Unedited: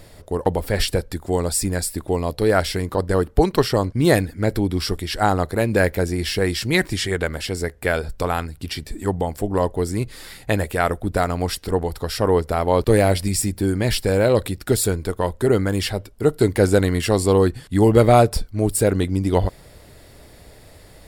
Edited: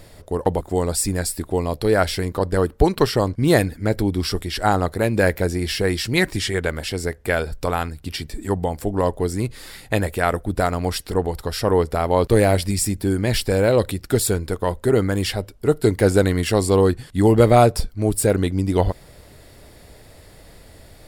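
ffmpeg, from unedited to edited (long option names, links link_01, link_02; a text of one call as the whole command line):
ffmpeg -i in.wav -filter_complex "[0:a]asplit=2[link_01][link_02];[link_01]atrim=end=0.612[link_03];[link_02]atrim=start=1.178[link_04];[link_03][link_04]acrossfade=duration=0.004:curve1=hsin:curve2=hsin" out.wav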